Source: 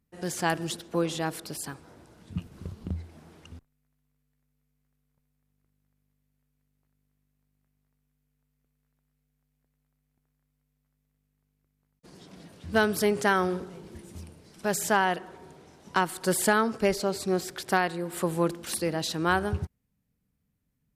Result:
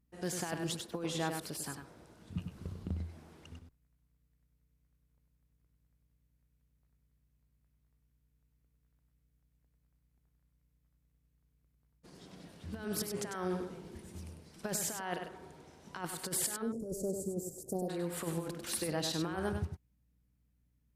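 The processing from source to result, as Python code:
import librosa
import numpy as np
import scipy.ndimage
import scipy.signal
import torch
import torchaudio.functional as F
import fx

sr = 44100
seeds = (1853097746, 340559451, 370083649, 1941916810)

y = fx.ellip_bandstop(x, sr, low_hz=540.0, high_hz=7100.0, order=3, stop_db=50, at=(16.61, 17.88), fade=0.02)
y = fx.over_compress(y, sr, threshold_db=-28.0, ratio=-0.5)
y = fx.add_hum(y, sr, base_hz=60, snr_db=34)
y = y + 10.0 ** (-6.5 / 20.0) * np.pad(y, (int(98 * sr / 1000.0), 0))[:len(y)]
y = y * 10.0 ** (-7.5 / 20.0)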